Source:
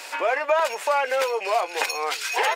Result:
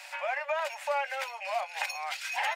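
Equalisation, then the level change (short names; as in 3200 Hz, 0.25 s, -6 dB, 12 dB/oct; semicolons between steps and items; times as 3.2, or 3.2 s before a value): rippled Chebyshev high-pass 550 Hz, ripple 6 dB; -5.5 dB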